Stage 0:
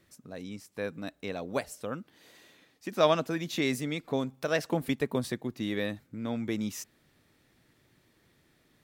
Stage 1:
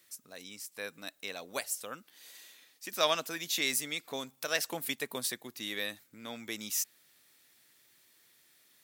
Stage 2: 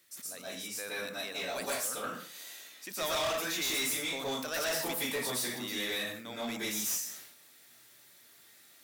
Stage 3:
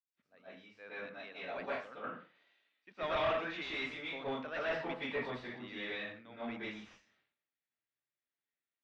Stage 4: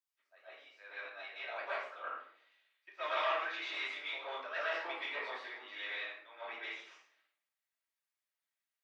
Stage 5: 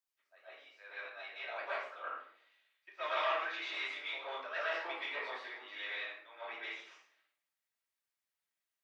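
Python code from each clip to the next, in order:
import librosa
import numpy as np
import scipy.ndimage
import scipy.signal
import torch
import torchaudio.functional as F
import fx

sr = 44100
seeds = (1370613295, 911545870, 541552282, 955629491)

y1 = fx.tilt_eq(x, sr, slope=4.5)
y1 = F.gain(torch.from_numpy(y1), -4.0).numpy()
y2 = fx.rev_plate(y1, sr, seeds[0], rt60_s=0.51, hf_ratio=0.75, predelay_ms=105, drr_db=-8.0)
y2 = 10.0 ** (-28.0 / 20.0) * np.tanh(y2 / 10.0 ** (-28.0 / 20.0))
y2 = fx.sustainer(y2, sr, db_per_s=66.0)
y2 = F.gain(torch.from_numpy(y2), -1.5).numpy()
y3 = scipy.signal.sosfilt(scipy.signal.butter(4, 2900.0, 'lowpass', fs=sr, output='sos'), y2)
y3 = fx.band_widen(y3, sr, depth_pct=100)
y3 = F.gain(torch.from_numpy(y3), -4.0).numpy()
y4 = scipy.signal.sosfilt(scipy.signal.bessel(8, 710.0, 'highpass', norm='mag', fs=sr, output='sos'), y3)
y4 = fx.hpss(y4, sr, part='harmonic', gain_db=-7)
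y4 = fx.room_shoebox(y4, sr, seeds[1], volume_m3=580.0, walls='furnished', distance_m=2.8)
y4 = F.gain(torch.from_numpy(y4), 1.5).numpy()
y5 = fx.hum_notches(y4, sr, base_hz=60, count=5)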